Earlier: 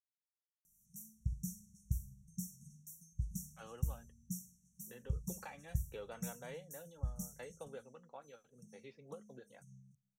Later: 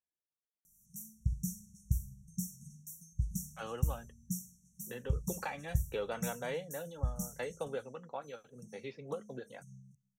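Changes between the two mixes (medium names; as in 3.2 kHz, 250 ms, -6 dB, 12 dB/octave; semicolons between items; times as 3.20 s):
speech +10.5 dB; background +5.0 dB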